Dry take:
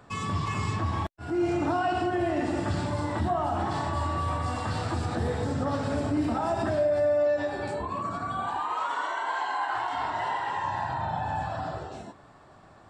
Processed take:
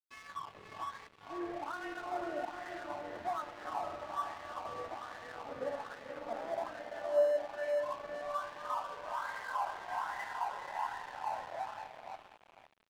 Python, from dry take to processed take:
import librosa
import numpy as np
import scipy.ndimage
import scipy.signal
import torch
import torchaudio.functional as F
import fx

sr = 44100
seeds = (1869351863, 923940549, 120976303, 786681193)

y = fx.wah_lfo(x, sr, hz=1.2, low_hz=490.0, high_hz=2000.0, q=5.0)
y = fx.echo_diffused(y, sr, ms=501, feedback_pct=43, wet_db=-5)
y = np.sign(y) * np.maximum(np.abs(y) - 10.0 ** (-48.5 / 20.0), 0.0)